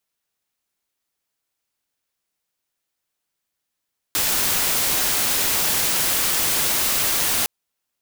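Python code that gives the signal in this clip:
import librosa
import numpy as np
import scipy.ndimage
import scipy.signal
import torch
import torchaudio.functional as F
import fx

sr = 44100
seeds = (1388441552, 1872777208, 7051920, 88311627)

y = fx.noise_colour(sr, seeds[0], length_s=3.31, colour='white', level_db=-20.5)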